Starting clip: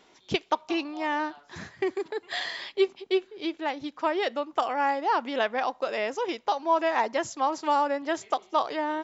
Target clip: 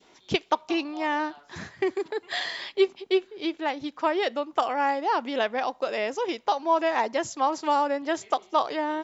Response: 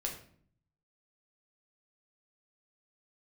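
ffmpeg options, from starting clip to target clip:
-af "adynamicequalizer=threshold=0.0158:dfrequency=1300:dqfactor=0.8:tfrequency=1300:tqfactor=0.8:attack=5:release=100:ratio=0.375:range=2:mode=cutabove:tftype=bell,volume=2dB"

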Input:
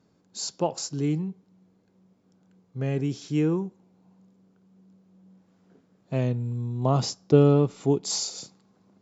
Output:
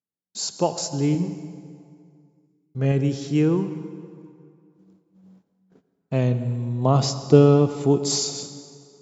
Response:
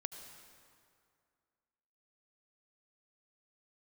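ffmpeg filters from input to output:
-filter_complex "[0:a]asettb=1/sr,asplit=3[link_01][link_02][link_03];[link_01]atrim=end=1.124[link_04];[link_02]atrim=start=1.12:end=2.92,asetpts=PTS-STARTPTS,afade=type=in:duration=0.004:curve=qsin,afade=type=out:start_time=1.796:duration=0.004:curve=qsin,asplit=2[link_05][link_06];[link_06]adelay=29,volume=-5dB[link_07];[link_05][link_07]amix=inputs=2:normalize=0,atrim=end_sample=79380[link_08];[link_03]atrim=start=2.916[link_09];[link_04][link_08]acrossfade=duration=0.004:curve1=hsin:curve2=qsin[link_10];[link_10][link_09]acrossfade=duration=0.004:curve1=qsin:curve2=hsin,agate=range=-39dB:threshold=-56dB:ratio=16:detection=peak,asplit=2[link_11][link_12];[1:a]atrim=start_sample=2205[link_13];[link_12][link_13]afir=irnorm=-1:irlink=0,volume=5dB[link_14];[link_11][link_14]amix=inputs=2:normalize=0,volume=-3dB"

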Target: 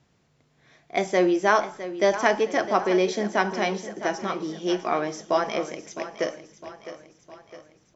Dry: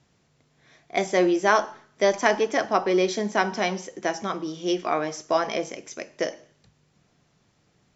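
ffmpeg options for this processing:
ffmpeg -i in.wav -af "highshelf=frequency=4400:gain=-4.5,aecho=1:1:659|1318|1977|2636|3295:0.224|0.114|0.0582|0.0297|0.0151" out.wav

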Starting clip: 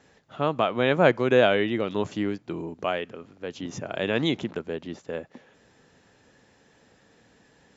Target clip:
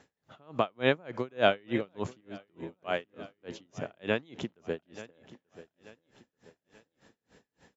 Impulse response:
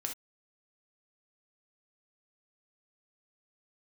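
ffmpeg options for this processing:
-filter_complex "[0:a]aecho=1:1:884|1768|2652:0.15|0.0598|0.0239,asettb=1/sr,asplit=3[link_01][link_02][link_03];[link_01]atrim=end=2.204[link_04];[link_02]atrim=start=2.2:end=2.79,asetpts=PTS-STARTPTS,afade=type=in:duration=0.004:curve=qsin,afade=type=out:start_time=0.586:duration=0.004:curve=qsin,acompressor=threshold=-34dB:ratio=4[link_05];[link_03]atrim=start=2.786[link_06];[link_04][link_05]acrossfade=duration=0.004:curve1=hsin:curve2=qsin[link_07];[link_07][link_06]acrossfade=duration=0.004:curve1=qsin:curve2=hsin,aeval=exprs='val(0)*pow(10,-35*(0.5-0.5*cos(2*PI*3.4*n/s))/20)':channel_layout=same"

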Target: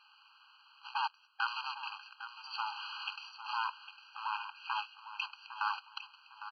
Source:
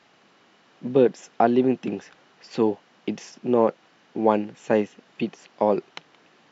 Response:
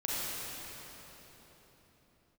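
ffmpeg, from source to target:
-filter_complex "[0:a]asettb=1/sr,asplit=3[link_01][link_02][link_03];[link_01]atrim=end=2.664[link_04];[link_02]atrim=start=2.66:end=3.16,asetpts=PTS-STARTPTS,afade=type=in:duration=0.004:curve=qsin,afade=type=out:start_time=0.496:duration=0.004:curve=qsin,aeval=exprs='val(0)+0.5*0.0237*sgn(val(0))':channel_layout=same[link_05];[link_03]atrim=start=3.156[link_06];[link_04][link_05]acrossfade=duration=0.004:curve1=hsin:curve2=qsin[link_07];[link_07][link_06]acrossfade=duration=0.004:curve1=qsin:curve2=hsin,acrusher=bits=4:mode=log:mix=0:aa=0.000001,asettb=1/sr,asplit=3[link_08][link_09][link_10];[link_08]atrim=end=3.674[link_11];[link_09]atrim=start=3.67:end=4.71,asetpts=PTS-STARTPTS,afade=type=in:duration=0.004:curve=qsin,afade=type=out:start_time=1.036:duration=0.004:curve=qsin,equalizer=frequency=125:width_type=o:width=1:gain=11,equalizer=frequency=250:width_type=o:width=1:gain=6,equalizer=frequency=500:width_type=o:width=1:gain=9,equalizer=frequency=1000:width_type=o:width=1:gain=-11,equalizer=frequency=2000:width_type=o:width=1:gain=12,equalizer=frequency=4000:width_type=o:width=1:gain=-6[link_12];[link_10]atrim=start=4.706[link_13];[link_11][link_12]acrossfade=duration=0.004:curve1=hsin:curve2=qsin[link_14];[link_14][link_13]acrossfade=duration=0.004:curve1=qsin:curve2=hsin,aeval=exprs='max(val(0),0)':channel_layout=same,alimiter=limit=-16dB:level=0:latency=1:release=58,asettb=1/sr,asplit=3[link_15][link_16][link_17];[link_15]atrim=end=0.864[link_18];[link_16]atrim=start=0.86:end=1.49,asetpts=PTS-STARTPTS,afade=type=in:duration=0.004:curve=qsin,afade=type=out:start_time=0.626:duration=0.004:curve=qsin,aeval=exprs='0.158*(cos(1*acos(clip(val(0)/0.158,-1,1)))-cos(1*PI/2))+0.0178*(cos(7*acos(clip(val(0)/0.158,-1,1)))-cos(7*PI/2))':channel_layout=same[link_19];[link_17]atrim=start=1.486[link_20];[link_18][link_19]acrossfade=duration=0.004:curve1=hsin:curve2=qsin[link_21];[link_21][link_20]acrossfade=duration=0.004:curve1=qsin:curve2=hsin,equalizer=frequency=510:width=0.9:gain=-12.5,asplit=2[link_22][link_23];[link_23]aecho=0:1:805|1610|2415:0.251|0.0728|0.0211[link_24];[link_22][link_24]amix=inputs=2:normalize=0,aresample=11025,aresample=44100,afftfilt=real='re*eq(mod(floor(b*sr/1024/810),2),1)':imag='im*eq(mod(floor(b*sr/1024/810),2),1)':win_size=1024:overlap=0.75,volume=6.5dB"

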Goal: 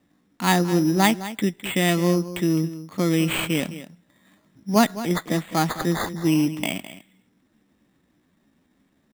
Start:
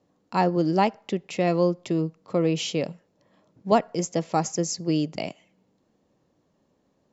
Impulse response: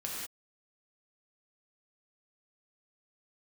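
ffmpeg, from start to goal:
-filter_complex "[0:a]equalizer=frequency=125:width_type=o:width=1:gain=-6,equalizer=frequency=250:width_type=o:width=1:gain=4,equalizer=frequency=500:width_type=o:width=1:gain=-12,equalizer=frequency=1000:width_type=o:width=1:gain=-5,equalizer=frequency=2000:width_type=o:width=1:gain=9,equalizer=frequency=4000:width_type=o:width=1:gain=-8,acrusher=samples=8:mix=1:aa=0.000001,atempo=0.78,asplit=2[link_01][link_02];[link_02]aecho=0:1:210:0.2[link_03];[link_01][link_03]amix=inputs=2:normalize=0,volume=6.5dB"

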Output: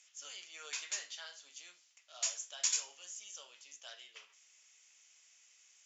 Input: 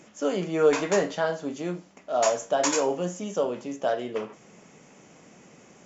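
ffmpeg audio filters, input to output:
ffmpeg -i in.wav -af "asuperpass=centerf=6000:order=4:qfactor=0.76,volume=-3.5dB" out.wav

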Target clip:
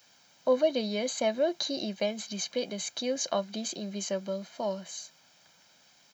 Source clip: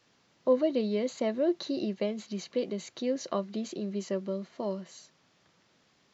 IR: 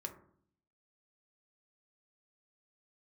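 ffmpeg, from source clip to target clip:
-af "aemphasis=mode=production:type=bsi,aecho=1:1:1.3:0.57,volume=2.5dB"

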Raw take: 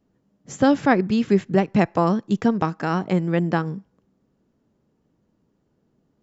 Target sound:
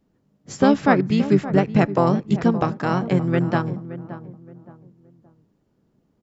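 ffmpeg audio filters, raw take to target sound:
ffmpeg -i in.wav -filter_complex "[0:a]asplit=2[link_01][link_02];[link_02]asetrate=33038,aresample=44100,atempo=1.33484,volume=-5dB[link_03];[link_01][link_03]amix=inputs=2:normalize=0,asplit=2[link_04][link_05];[link_05]adelay=571,lowpass=frequency=1100:poles=1,volume=-13dB,asplit=2[link_06][link_07];[link_07]adelay=571,lowpass=frequency=1100:poles=1,volume=0.34,asplit=2[link_08][link_09];[link_09]adelay=571,lowpass=frequency=1100:poles=1,volume=0.34[link_10];[link_04][link_06][link_08][link_10]amix=inputs=4:normalize=0" out.wav

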